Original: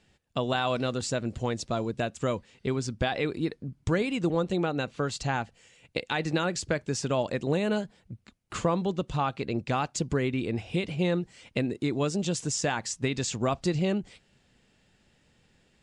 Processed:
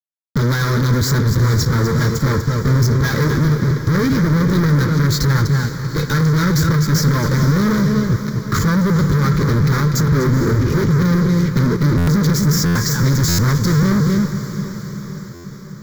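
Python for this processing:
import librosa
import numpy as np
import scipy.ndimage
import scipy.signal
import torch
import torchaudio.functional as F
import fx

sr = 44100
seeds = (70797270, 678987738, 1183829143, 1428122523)

y = fx.envelope_sharpen(x, sr, power=2.0, at=(10.06, 10.97))
y = fx.peak_eq(y, sr, hz=110.0, db=10.0, octaves=1.9)
y = fx.comb_fb(y, sr, f0_hz=150.0, decay_s=0.18, harmonics='odd', damping=0.0, mix_pct=70)
y = y + 10.0 ** (-13.0 / 20.0) * np.pad(y, (int(246 * sr / 1000.0), 0))[:len(y)]
y = fx.fuzz(y, sr, gain_db=50.0, gate_db=-54.0)
y = fx.peak_eq(y, sr, hz=3300.0, db=-8.5, octaves=1.0)
y = fx.fixed_phaser(y, sr, hz=2700.0, stages=6)
y = fx.echo_diffused(y, sr, ms=460, feedback_pct=62, wet_db=-10.5)
y = fx.buffer_glitch(y, sr, at_s=(11.97, 12.65, 13.28, 15.34), block=512, repeats=8)
y = y * librosa.db_to_amplitude(1.0)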